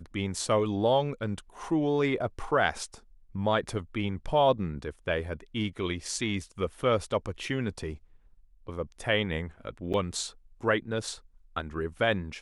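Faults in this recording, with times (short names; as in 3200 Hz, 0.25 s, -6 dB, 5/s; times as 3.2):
9.93–9.94 gap 7.9 ms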